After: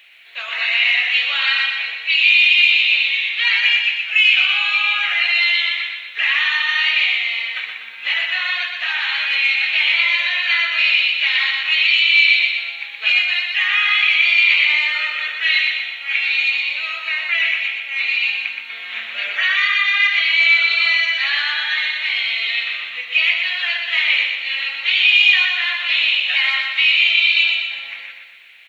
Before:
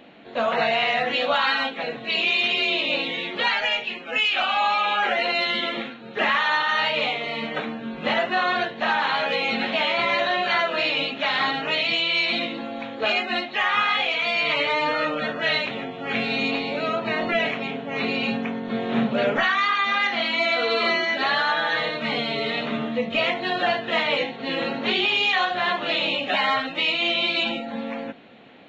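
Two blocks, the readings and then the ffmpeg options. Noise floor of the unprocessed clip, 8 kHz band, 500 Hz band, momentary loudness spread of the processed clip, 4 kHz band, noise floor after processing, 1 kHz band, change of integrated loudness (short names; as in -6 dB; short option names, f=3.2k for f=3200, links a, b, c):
-37 dBFS, n/a, under -20 dB, 11 LU, +8.0 dB, -34 dBFS, -9.0 dB, +7.5 dB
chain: -af "highpass=f=2.3k:t=q:w=2.8,acrusher=bits=10:mix=0:aa=0.000001,aecho=1:1:122|244|366|488|610|732|854:0.562|0.292|0.152|0.0791|0.0411|0.0214|0.0111,volume=1dB"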